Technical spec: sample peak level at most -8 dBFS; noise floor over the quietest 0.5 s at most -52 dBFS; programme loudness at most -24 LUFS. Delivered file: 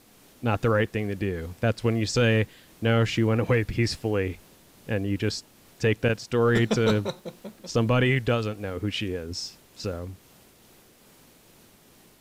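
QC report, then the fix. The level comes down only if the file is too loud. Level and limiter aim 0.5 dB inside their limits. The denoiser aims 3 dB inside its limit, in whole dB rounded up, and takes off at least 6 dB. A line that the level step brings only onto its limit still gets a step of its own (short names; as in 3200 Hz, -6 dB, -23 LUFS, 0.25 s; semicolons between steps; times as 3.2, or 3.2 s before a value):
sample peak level -13.5 dBFS: OK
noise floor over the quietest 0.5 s -56 dBFS: OK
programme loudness -26.0 LUFS: OK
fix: none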